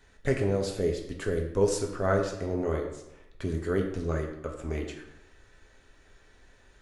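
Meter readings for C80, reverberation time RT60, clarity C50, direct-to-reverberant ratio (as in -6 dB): 8.5 dB, 0.95 s, 6.5 dB, 1.0 dB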